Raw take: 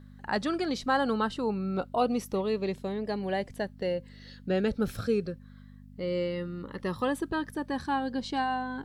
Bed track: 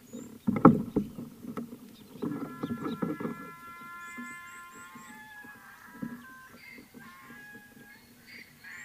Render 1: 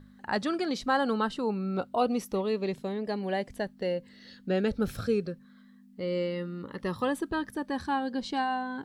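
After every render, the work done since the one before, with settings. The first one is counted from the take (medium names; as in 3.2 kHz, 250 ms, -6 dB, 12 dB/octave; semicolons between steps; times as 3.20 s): de-hum 50 Hz, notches 3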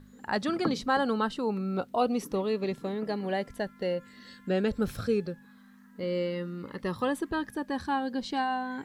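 add bed track -14 dB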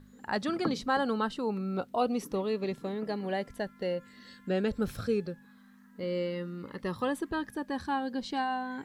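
trim -2 dB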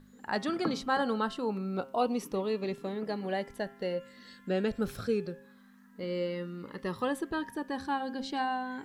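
peaking EQ 65 Hz -5.5 dB 1.9 oct; de-hum 134.1 Hz, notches 26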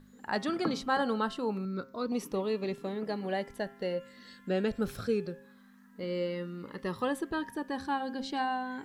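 1.65–2.12 s: static phaser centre 2.9 kHz, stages 6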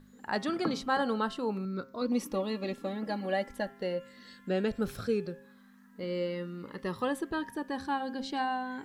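2.01–3.70 s: comb 3.6 ms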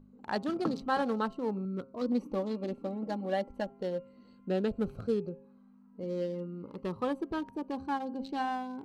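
local Wiener filter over 25 samples; dynamic bell 2.2 kHz, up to -5 dB, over -51 dBFS, Q 2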